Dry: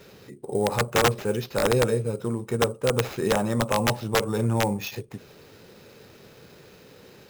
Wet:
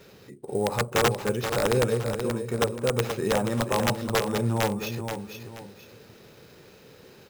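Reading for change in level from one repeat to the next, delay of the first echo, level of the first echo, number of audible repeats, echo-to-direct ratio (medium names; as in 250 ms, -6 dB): -10.0 dB, 479 ms, -7.5 dB, 2, -7.0 dB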